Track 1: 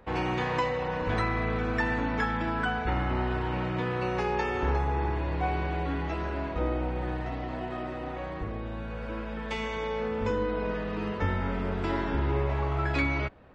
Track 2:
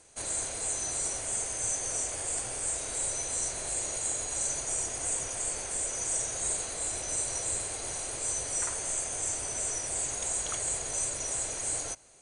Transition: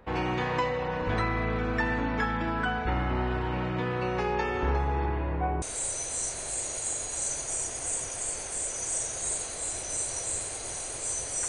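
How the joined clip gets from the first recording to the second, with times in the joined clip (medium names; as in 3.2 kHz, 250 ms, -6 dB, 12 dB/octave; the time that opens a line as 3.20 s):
track 1
5.05–5.62 s: low-pass 4.2 kHz -> 1 kHz
5.62 s: go over to track 2 from 2.81 s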